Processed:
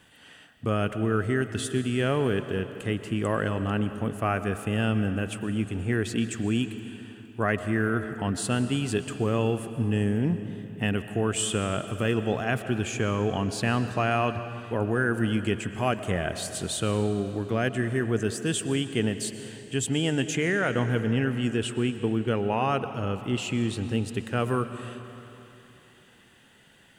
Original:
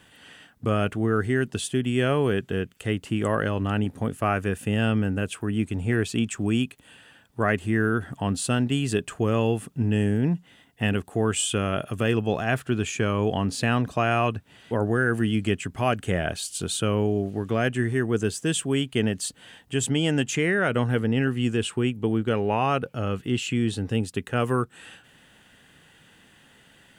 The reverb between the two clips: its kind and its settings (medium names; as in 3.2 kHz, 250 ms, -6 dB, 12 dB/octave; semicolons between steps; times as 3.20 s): algorithmic reverb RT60 3.1 s, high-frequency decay 0.85×, pre-delay 80 ms, DRR 10 dB; trim -2.5 dB